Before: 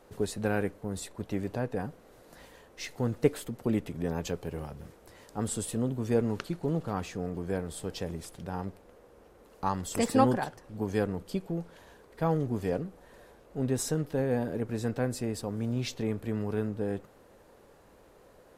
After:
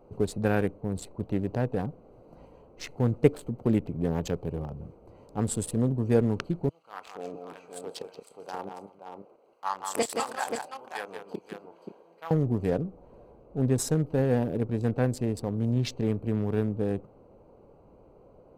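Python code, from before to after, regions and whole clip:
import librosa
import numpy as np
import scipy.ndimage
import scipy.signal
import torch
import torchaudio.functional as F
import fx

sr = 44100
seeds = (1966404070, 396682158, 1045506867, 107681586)

y = fx.chain(x, sr, fx.filter_lfo_highpass(shape='saw_down', hz=1.5, low_hz=350.0, high_hz=3700.0, q=0.86),
    fx.doubler(ms=30.0, db=-10.0),
    fx.echo_multitap(ms=(175, 300, 530), db=(-5.0, -18.5, -5.5)), at=(6.69, 12.31))
y = fx.wiener(y, sr, points=25)
y = fx.peak_eq(y, sr, hz=130.0, db=3.0, octaves=0.77)
y = y * librosa.db_to_amplitude(3.5)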